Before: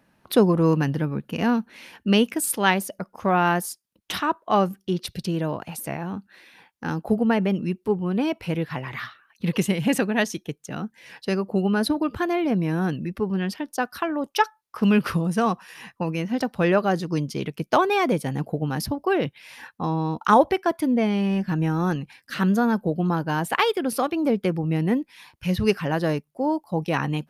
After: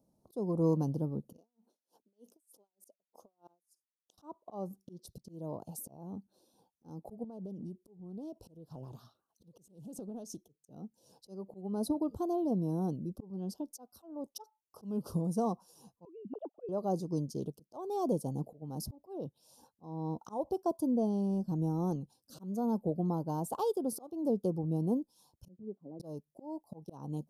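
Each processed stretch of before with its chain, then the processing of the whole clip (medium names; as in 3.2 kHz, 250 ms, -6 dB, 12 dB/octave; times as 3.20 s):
1.37–4.18 s: high-pass 350 Hz + compression 10:1, threshold -29 dBFS + logarithmic tremolo 3.3 Hz, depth 40 dB
7.24–10.56 s: compression 20:1, threshold -29 dBFS + loudspeaker Doppler distortion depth 0.16 ms
16.05–16.69 s: formants replaced by sine waves + upward expansion, over -39 dBFS
25.48–26.00 s: gate -27 dBFS, range -6 dB + ladder band-pass 300 Hz, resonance 40%
whole clip: Chebyshev band-stop 610–6400 Hz, order 2; dynamic bell 1 kHz, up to +6 dB, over -42 dBFS, Q 2; slow attack 324 ms; trim -8.5 dB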